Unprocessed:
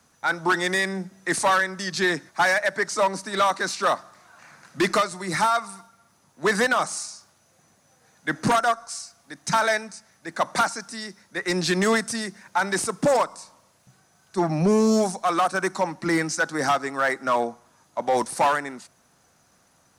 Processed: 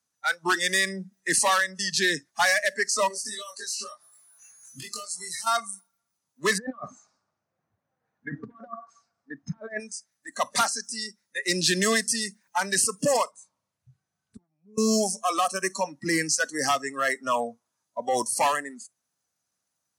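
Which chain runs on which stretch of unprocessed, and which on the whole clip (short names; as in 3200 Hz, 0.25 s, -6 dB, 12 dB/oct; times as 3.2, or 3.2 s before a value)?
3.08–5.47 high shelf 4000 Hz +7 dB + compressor 10:1, threshold -33 dBFS + doubler 23 ms -2.5 dB
6.58–9.8 LPF 1400 Hz + negative-ratio compressor -29 dBFS, ratio -0.5 + feedback echo 0.231 s, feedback 32%, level -21.5 dB
13.31–14.78 flipped gate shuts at -27 dBFS, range -31 dB + tone controls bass +7 dB, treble -9 dB
whole clip: spectral noise reduction 22 dB; HPF 52 Hz; high shelf 2700 Hz +11 dB; gain -4 dB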